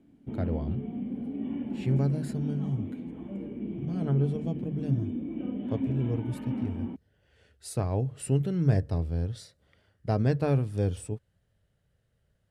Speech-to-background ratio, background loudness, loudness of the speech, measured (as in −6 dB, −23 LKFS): 5.0 dB, −35.5 LKFS, −30.5 LKFS